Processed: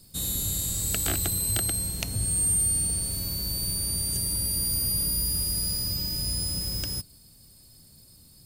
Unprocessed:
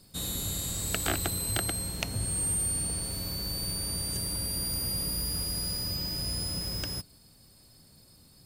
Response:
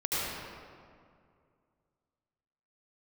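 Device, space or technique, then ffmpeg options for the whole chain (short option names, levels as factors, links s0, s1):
smiley-face EQ: -af "lowshelf=f=140:g=5,equalizer=f=1100:t=o:w=2.9:g=-4,highshelf=f=5500:g=8"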